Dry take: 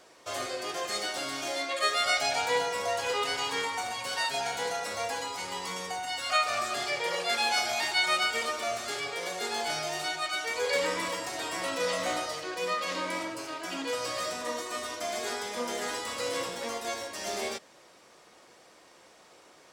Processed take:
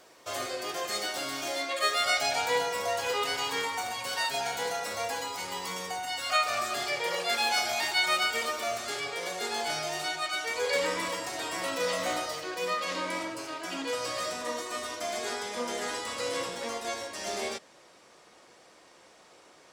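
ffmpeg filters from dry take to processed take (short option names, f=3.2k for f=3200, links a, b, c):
-af "asetnsamples=n=441:p=0,asendcmd='8.78 equalizer g 3;11.58 equalizer g 9.5;12.81 equalizer g -2;15.17 equalizer g -12',equalizer=f=15k:t=o:w=0.26:g=12.5"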